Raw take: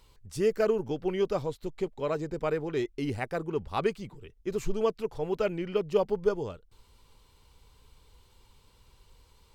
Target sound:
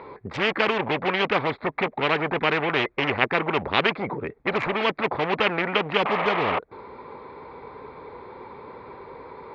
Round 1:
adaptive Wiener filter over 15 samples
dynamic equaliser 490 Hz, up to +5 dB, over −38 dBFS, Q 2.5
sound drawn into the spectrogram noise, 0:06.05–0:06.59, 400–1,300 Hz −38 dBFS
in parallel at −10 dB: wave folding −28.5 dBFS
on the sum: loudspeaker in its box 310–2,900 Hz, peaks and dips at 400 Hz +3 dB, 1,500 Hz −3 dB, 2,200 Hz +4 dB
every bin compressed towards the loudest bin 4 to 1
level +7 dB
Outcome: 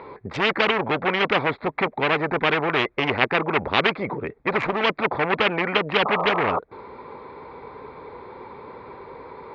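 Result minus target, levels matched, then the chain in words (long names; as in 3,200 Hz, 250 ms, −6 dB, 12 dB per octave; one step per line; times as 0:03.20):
wave folding: distortion −14 dB
adaptive Wiener filter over 15 samples
dynamic equaliser 490 Hz, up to +5 dB, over −38 dBFS, Q 2.5
sound drawn into the spectrogram noise, 0:06.05–0:06.59, 400–1,300 Hz −38 dBFS
in parallel at −10 dB: wave folding −39.5 dBFS
on the sum: loudspeaker in its box 310–2,900 Hz, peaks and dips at 400 Hz +3 dB, 1,500 Hz −3 dB, 2,200 Hz +4 dB
every bin compressed towards the loudest bin 4 to 1
level +7 dB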